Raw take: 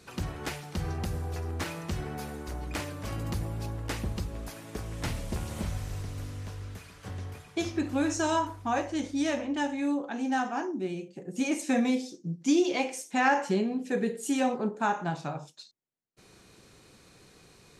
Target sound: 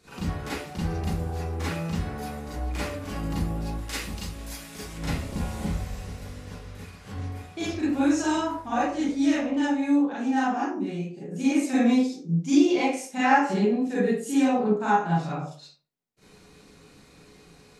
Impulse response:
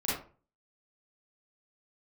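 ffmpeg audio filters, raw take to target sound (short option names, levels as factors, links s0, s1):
-filter_complex "[0:a]asettb=1/sr,asplit=3[s0][s1][s2];[s0]atrim=end=3.744[s3];[s1]atrim=start=3.74:end=4.94,asetpts=PTS-STARTPTS,afade=t=in:d=0.004:c=qsin,afade=t=out:st=1.196:d=0.004:c=qsin,tiltshelf=f=1500:g=-7.5[s4];[s2]atrim=start=4.936[s5];[s3][s4]acrossfade=d=0.004:c1=hsin:c2=qsin[s6];[s6][s5]acrossfade=d=0.004:c1=qsin:c2=hsin[s7];[1:a]atrim=start_sample=2205[s8];[s7][s8]afir=irnorm=-1:irlink=0,volume=0.631"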